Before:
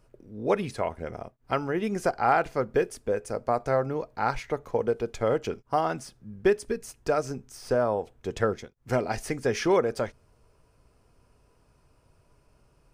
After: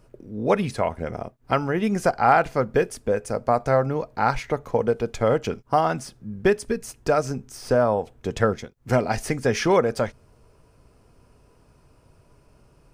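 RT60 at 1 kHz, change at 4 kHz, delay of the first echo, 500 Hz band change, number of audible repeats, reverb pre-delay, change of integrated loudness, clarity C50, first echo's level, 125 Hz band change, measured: no reverb, +5.0 dB, no echo, +4.0 dB, no echo, no reverb, +4.5 dB, no reverb, no echo, +7.5 dB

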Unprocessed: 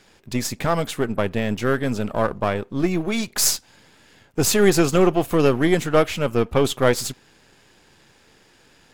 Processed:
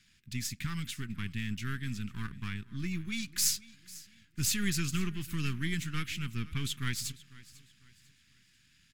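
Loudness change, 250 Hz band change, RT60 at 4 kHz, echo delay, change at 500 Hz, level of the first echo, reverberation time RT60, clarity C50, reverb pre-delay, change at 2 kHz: -13.5 dB, -15.0 dB, no reverb, 497 ms, -33.0 dB, -20.0 dB, no reverb, no reverb, no reverb, -11.0 dB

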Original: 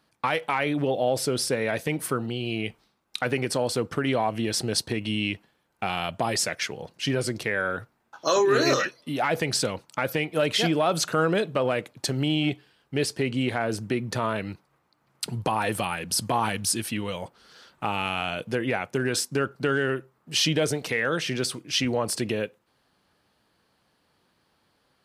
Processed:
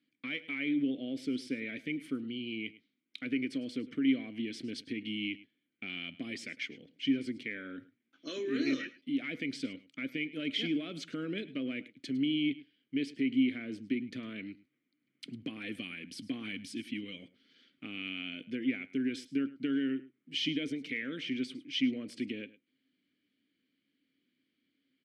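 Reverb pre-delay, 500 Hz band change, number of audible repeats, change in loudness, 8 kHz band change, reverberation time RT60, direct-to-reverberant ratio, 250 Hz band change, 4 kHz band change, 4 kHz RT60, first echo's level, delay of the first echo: no reverb, -17.5 dB, 1, -9.5 dB, -25.0 dB, no reverb, no reverb, -3.0 dB, -10.0 dB, no reverb, -18.5 dB, 105 ms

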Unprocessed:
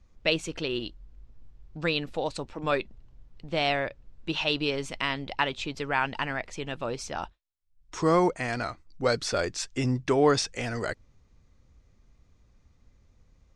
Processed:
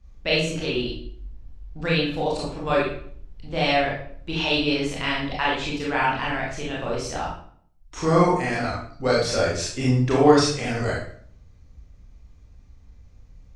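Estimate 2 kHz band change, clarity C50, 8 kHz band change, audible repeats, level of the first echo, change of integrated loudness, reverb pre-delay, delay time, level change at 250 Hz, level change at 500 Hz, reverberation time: +4.5 dB, 1.5 dB, +4.0 dB, no echo, no echo, +5.5 dB, 23 ms, no echo, +6.5 dB, +5.5 dB, 0.55 s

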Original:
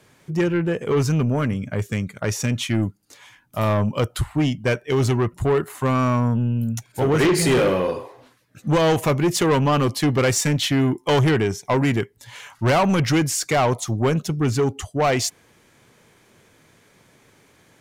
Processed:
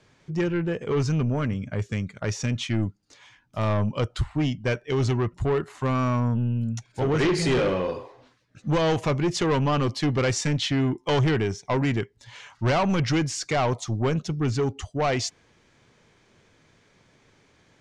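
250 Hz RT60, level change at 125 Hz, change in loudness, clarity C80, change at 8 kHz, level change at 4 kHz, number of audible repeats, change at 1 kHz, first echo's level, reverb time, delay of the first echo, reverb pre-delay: no reverb, -3.5 dB, -4.5 dB, no reverb, -8.0 dB, -4.0 dB, no echo, -5.0 dB, no echo, no reverb, no echo, no reverb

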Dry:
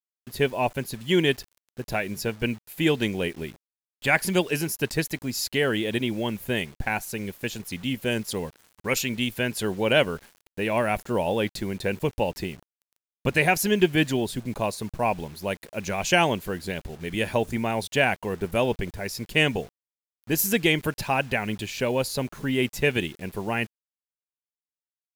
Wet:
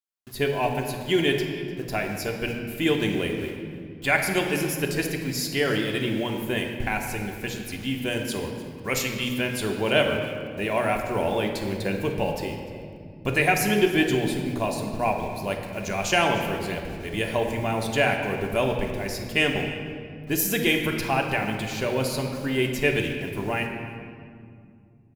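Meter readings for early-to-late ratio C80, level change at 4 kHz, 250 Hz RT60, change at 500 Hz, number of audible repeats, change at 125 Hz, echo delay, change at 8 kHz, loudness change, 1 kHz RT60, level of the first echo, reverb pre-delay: 6.0 dB, 0.0 dB, 3.6 s, +0.5 dB, 1, +0.5 dB, 300 ms, -0.5 dB, +0.5 dB, 2.1 s, -18.5 dB, 3 ms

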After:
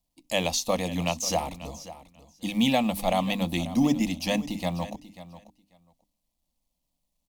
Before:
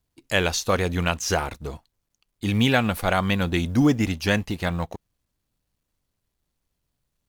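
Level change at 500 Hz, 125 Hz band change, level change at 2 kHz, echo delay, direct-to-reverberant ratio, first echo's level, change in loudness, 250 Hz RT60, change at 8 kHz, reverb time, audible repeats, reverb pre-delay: -3.0 dB, -8.0 dB, -9.0 dB, 540 ms, no reverb, -15.5 dB, -3.5 dB, no reverb, -0.5 dB, no reverb, 2, no reverb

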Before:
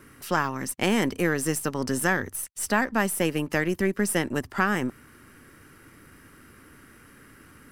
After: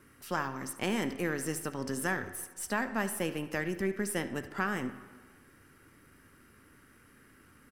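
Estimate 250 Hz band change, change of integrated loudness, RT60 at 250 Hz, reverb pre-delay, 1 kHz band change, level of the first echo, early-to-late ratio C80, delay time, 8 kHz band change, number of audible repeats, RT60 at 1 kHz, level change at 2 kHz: -8.0 dB, -8.0 dB, 1.2 s, 6 ms, -8.0 dB, -16.0 dB, 14.0 dB, 73 ms, -8.5 dB, 1, 1.5 s, -8.0 dB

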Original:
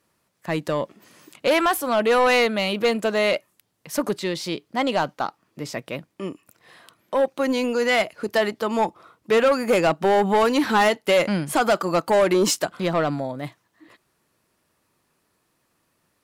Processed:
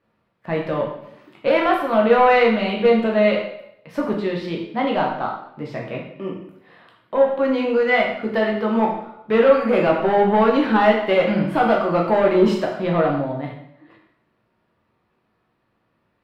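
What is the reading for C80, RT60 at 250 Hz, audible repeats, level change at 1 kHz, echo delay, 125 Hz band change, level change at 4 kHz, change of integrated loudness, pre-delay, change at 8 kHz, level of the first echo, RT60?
7.5 dB, 0.75 s, no echo, +3.0 dB, no echo, +4.0 dB, -4.0 dB, +3.0 dB, 5 ms, under -20 dB, no echo, 0.75 s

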